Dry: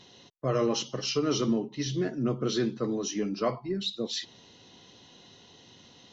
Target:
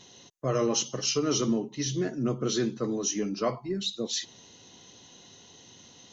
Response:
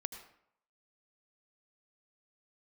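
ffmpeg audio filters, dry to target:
-af "equalizer=f=6.5k:t=o:w=0.29:g=12.5"

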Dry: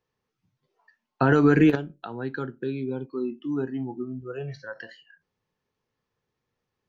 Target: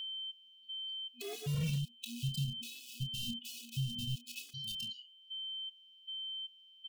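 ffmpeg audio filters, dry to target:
-filter_complex "[0:a]asplit=2[a][b];[b]acrusher=bits=4:mix=0:aa=0.000001,volume=-5dB[c];[a][c]amix=inputs=2:normalize=0,afftfilt=real='re*(1-between(b*sr/4096,240,2500))':imag='im*(1-between(b*sr/4096,240,2500))':win_size=4096:overlap=0.75,volume=22dB,asoftclip=hard,volume=-22dB,asplit=2[d][e];[e]adelay=29,volume=-8dB[f];[d][f]amix=inputs=2:normalize=0,aeval=exprs='val(0)+0.01*sin(2*PI*3100*n/s)':c=same,aeval=exprs='0.0668*(abs(mod(val(0)/0.0668+3,4)-2)-1)':c=same,equalizer=f=780:t=o:w=1.8:g=-8,acompressor=threshold=-34dB:ratio=12,afftfilt=real='re*gt(sin(2*PI*1.3*pts/sr)*(1-2*mod(floor(b*sr/1024/220),2)),0)':imag='im*gt(sin(2*PI*1.3*pts/sr)*(1-2*mod(floor(b*sr/1024/220),2)),0)':win_size=1024:overlap=0.75,volume=3dB"

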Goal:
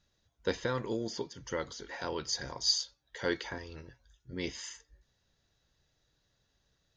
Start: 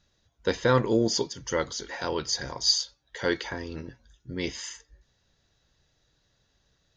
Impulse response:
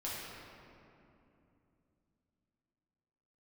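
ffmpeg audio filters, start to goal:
-filter_complex "[0:a]asettb=1/sr,asplit=3[a][b][c];[a]atrim=end=0.604[d];[b]atrim=start=0.6:end=2.28,asetpts=PTS-STARTPTS,afade=t=in:d=0.004:c=qsin,afade=t=out:st=1.676:d=0.004:c=qsin,acrossover=split=1300|2900|6200[e][f][g][h];[e]acompressor=threshold=-26dB:ratio=4[i];[f]acompressor=threshold=-35dB:ratio=4[j];[g]acompressor=threshold=-44dB:ratio=4[k];[h]acompressor=threshold=-51dB:ratio=4[l];[i][j][k][l]amix=inputs=4:normalize=0[m];[c]atrim=start=2.276[n];[d][m]acrossfade=d=0.004:c1=hsin:c2=qsin[o];[o][n]acrossfade=d=0.004:c1=qsin:c2=hsin,asettb=1/sr,asplit=3[p][q][r];[p]atrim=end=3.584[s];[q]atrim=start=3.58:end=4.33,asetpts=PTS-STARTPTS,afade=t=in:d=0.004:c=qsin,afade=t=out:st=0.746:d=0.004:c=qsin,equalizer=f=240:w=1.2:g=-10.5[t];[r]atrim=start=4.326[u];[s][t]acrossfade=d=0.004:c1=hsin:c2=qsin[v];[v][u]acrossfade=d=0.004:c1=qsin:c2=hsin,volume=-5.5dB"

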